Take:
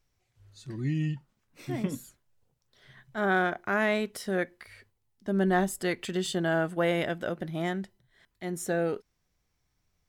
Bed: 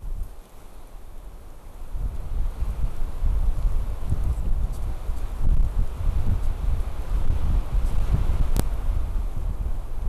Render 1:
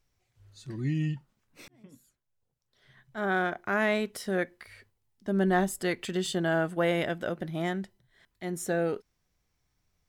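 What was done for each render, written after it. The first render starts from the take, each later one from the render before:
0:01.68–0:03.86: fade in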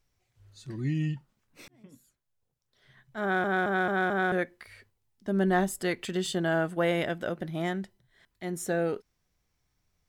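0:03.22: stutter in place 0.22 s, 5 plays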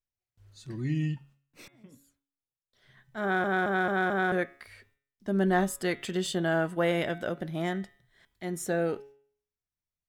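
noise gate with hold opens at −60 dBFS
hum removal 139.3 Hz, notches 27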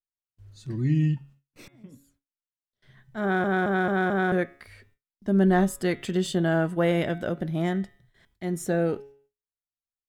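noise gate with hold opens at −57 dBFS
low-shelf EQ 360 Hz +8.5 dB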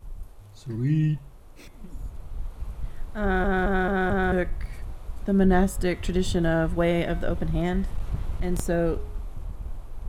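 mix in bed −7.5 dB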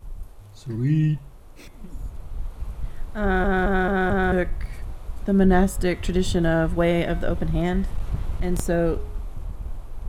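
level +2.5 dB

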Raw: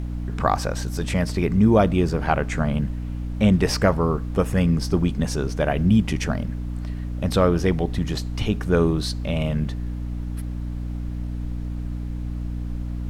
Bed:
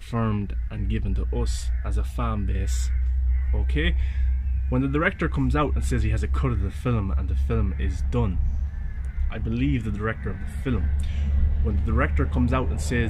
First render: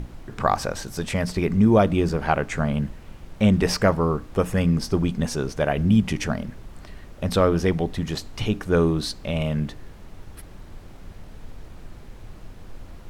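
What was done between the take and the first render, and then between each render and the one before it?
mains-hum notches 60/120/180/240/300 Hz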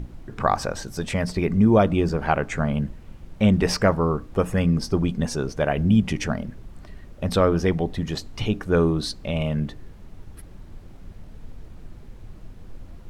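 broadband denoise 6 dB, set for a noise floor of −43 dBFS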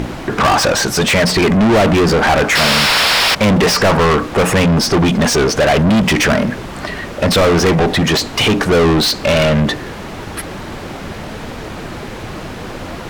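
0:02.55–0:03.35: sound drawn into the spectrogram noise 420–5,600 Hz −27 dBFS
mid-hump overdrive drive 37 dB, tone 4,500 Hz, clips at −4.5 dBFS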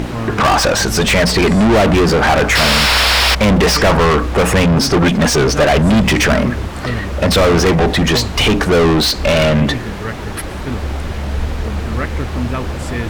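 mix in bed +1.5 dB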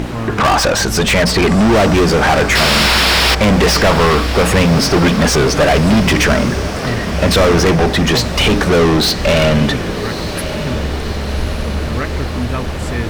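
feedback delay with all-pass diffusion 1,174 ms, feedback 65%, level −12 dB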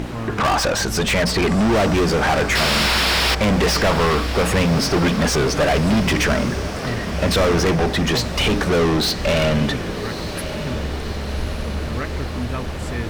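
level −6 dB

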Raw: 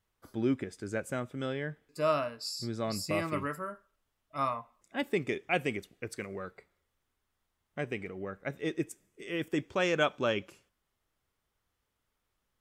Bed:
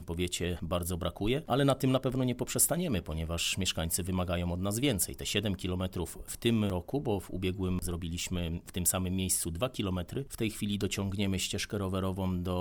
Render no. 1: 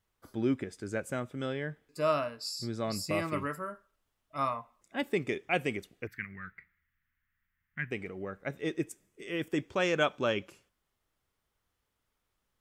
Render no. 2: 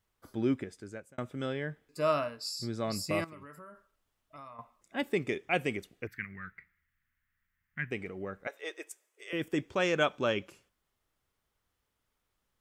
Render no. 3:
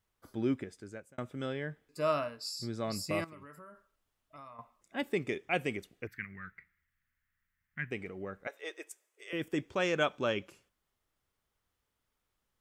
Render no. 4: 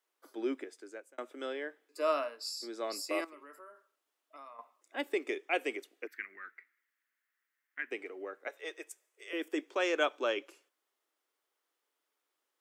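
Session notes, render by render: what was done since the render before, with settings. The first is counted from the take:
0:06.07–0:07.91: drawn EQ curve 170 Hz 0 dB, 280 Hz −9 dB, 530 Hz −27 dB, 1,100 Hz −8 dB, 1,800 Hz +10 dB, 4,000 Hz −14 dB, 6,100 Hz −18 dB, 9,200 Hz −24 dB, 14,000 Hz +1 dB
0:00.52–0:01.18: fade out; 0:03.24–0:04.59: downward compressor 5 to 1, threshold −47 dBFS; 0:08.47–0:09.33: high-pass filter 520 Hz 24 dB per octave
level −2 dB
Butterworth high-pass 290 Hz 48 dB per octave

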